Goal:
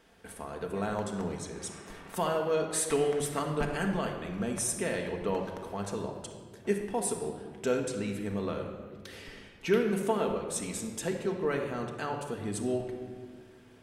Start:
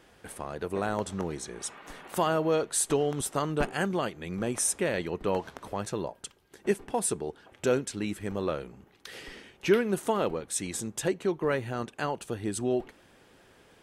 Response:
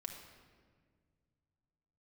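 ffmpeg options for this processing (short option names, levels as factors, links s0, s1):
-filter_complex "[0:a]asettb=1/sr,asplit=3[s0][s1][s2];[s0]atrim=end=2.734[s3];[s1]atrim=start=2.73:end=3.39,asetpts=PTS-STARTPTS,afade=t=in:d=0.004:c=qsin,afade=t=out:st=0.656:d=0.004:c=qsin,equalizer=f=2000:w=2:g=10.5[s4];[s2]atrim=start=3.386[s5];[s3][s4]acrossfade=d=0.004:c1=hsin:c2=qsin[s6];[s6][s5]acrossfade=d=0.004:c1=qsin:c2=hsin[s7];[1:a]atrim=start_sample=2205[s8];[s7][s8]afir=irnorm=-1:irlink=0"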